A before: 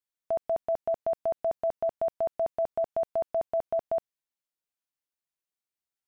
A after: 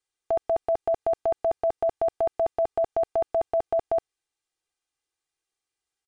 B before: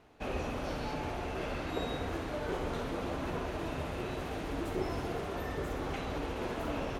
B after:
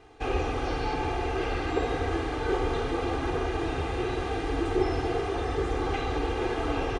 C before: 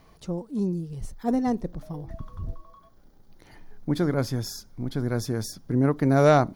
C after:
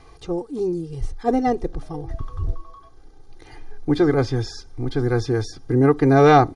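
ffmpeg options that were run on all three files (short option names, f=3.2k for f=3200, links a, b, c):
-filter_complex "[0:a]aecho=1:1:2.5:0.87,aresample=22050,aresample=44100,acrossover=split=4900[a][b];[b]acompressor=threshold=-59dB:ratio=4:attack=1:release=60[c];[a][c]amix=inputs=2:normalize=0,volume=5dB"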